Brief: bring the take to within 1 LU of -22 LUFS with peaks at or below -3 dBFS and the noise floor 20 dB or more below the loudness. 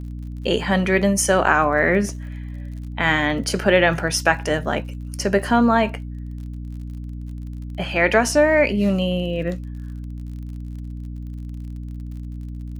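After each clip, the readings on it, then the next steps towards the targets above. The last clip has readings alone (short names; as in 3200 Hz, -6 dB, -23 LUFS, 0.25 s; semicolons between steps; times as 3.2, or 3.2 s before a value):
ticks 43/s; hum 60 Hz; harmonics up to 300 Hz; hum level -29 dBFS; loudness -19.5 LUFS; peak -1.5 dBFS; loudness target -22.0 LUFS
-> de-click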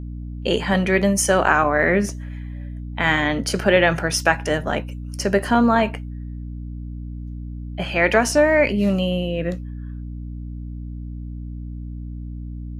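ticks 0.16/s; hum 60 Hz; harmonics up to 240 Hz; hum level -29 dBFS
-> de-hum 60 Hz, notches 4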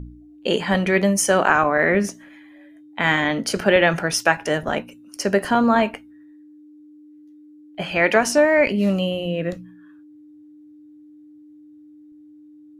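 hum none; loudness -19.5 LUFS; peak -1.5 dBFS; loudness target -22.0 LUFS
-> gain -2.5 dB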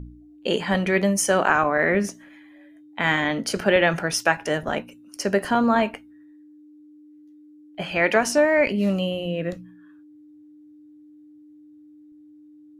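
loudness -22.0 LUFS; peak -4.0 dBFS; noise floor -49 dBFS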